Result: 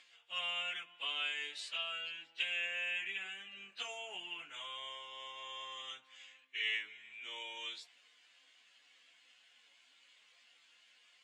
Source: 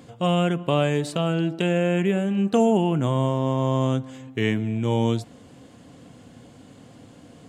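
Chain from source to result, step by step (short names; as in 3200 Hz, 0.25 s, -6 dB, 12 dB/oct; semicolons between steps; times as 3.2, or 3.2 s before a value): octaver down 2 oct, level -6 dB; plain phase-vocoder stretch 1.5×; ladder band-pass 3000 Hz, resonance 35%; gain +8 dB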